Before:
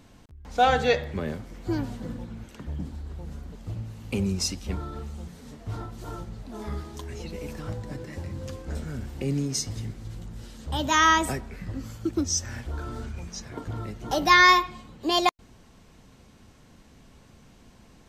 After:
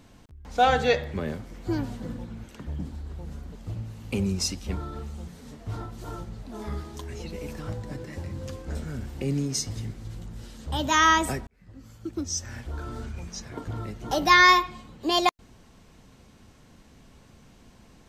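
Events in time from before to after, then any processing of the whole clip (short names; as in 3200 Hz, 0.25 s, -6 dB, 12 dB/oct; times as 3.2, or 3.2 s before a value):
11.47–13.43 fade in equal-power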